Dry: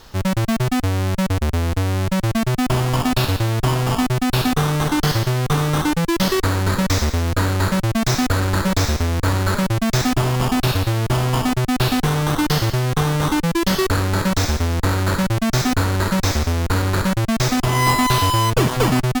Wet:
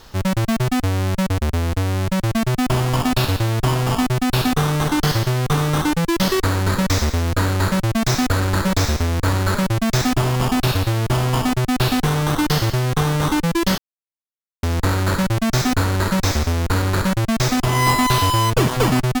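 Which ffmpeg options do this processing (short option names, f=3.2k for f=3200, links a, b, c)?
-filter_complex "[0:a]asettb=1/sr,asplit=3[a][b][c];[a]atrim=end=1.234[d];[b]atrim=start=1.23:end=2.32,asetpts=PTS-STARTPTS,afade=t=in:d=0.004:c=qsin,afade=t=out:st=1.086:d=0.004:c=qsin,aeval=exprs='sgn(val(0))*max(abs(val(0))-0.00631,0)':c=same[e];[c]atrim=start=2.316[f];[d][e]acrossfade=d=0.004:c1=hsin:c2=qsin[g];[g][f]acrossfade=d=0.004:c1=qsin:c2=hsin,asplit=3[h][i][j];[h]atrim=end=13.78,asetpts=PTS-STARTPTS,afade=t=out:st=13.776:d=0.004:c=hsin[k];[i]atrim=start=13.78:end=14.63,asetpts=PTS-STARTPTS,volume=0[l];[j]atrim=start=14.63,asetpts=PTS-STARTPTS,afade=t=in:d=0.004:c=hsin[m];[k][l][m]concat=n=3:v=0:a=1"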